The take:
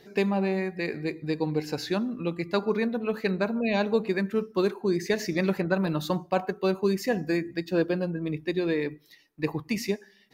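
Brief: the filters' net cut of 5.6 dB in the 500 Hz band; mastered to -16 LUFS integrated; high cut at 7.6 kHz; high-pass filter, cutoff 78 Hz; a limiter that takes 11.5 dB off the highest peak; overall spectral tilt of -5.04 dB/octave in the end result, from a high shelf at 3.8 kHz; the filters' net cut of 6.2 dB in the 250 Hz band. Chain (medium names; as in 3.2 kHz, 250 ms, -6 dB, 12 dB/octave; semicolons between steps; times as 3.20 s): high-pass 78 Hz; low-pass 7.6 kHz; peaking EQ 250 Hz -8 dB; peaking EQ 500 Hz -4 dB; treble shelf 3.8 kHz -6 dB; trim +21 dB; peak limiter -5 dBFS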